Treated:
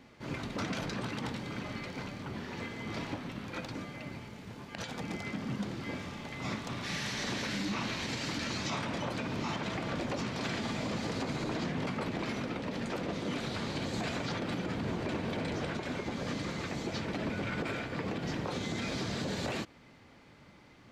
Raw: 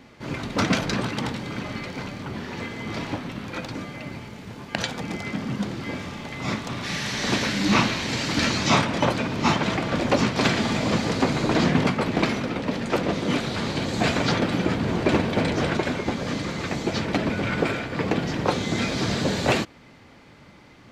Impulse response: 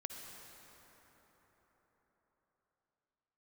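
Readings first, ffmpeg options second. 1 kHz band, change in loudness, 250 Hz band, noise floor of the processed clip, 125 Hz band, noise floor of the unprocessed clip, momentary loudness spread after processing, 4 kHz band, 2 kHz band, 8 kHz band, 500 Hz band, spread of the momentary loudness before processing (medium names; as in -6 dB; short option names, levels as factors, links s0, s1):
-12.0 dB, -11.5 dB, -11.5 dB, -57 dBFS, -11.0 dB, -50 dBFS, 6 LU, -11.0 dB, -11.0 dB, -11.0 dB, -12.0 dB, 12 LU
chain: -af "alimiter=limit=0.119:level=0:latency=1:release=76,volume=0.422"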